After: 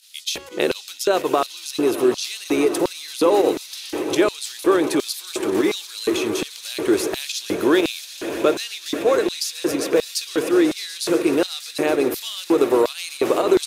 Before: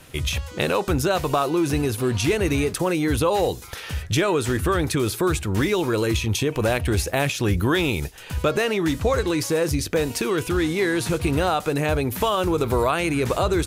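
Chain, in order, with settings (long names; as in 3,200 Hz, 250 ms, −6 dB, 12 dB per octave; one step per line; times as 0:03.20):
fake sidechain pumping 123 BPM, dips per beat 2, −11 dB, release 61 ms
echo that builds up and dies away 123 ms, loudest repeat 8, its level −18 dB
auto-filter high-pass square 1.4 Hz 350–4,200 Hz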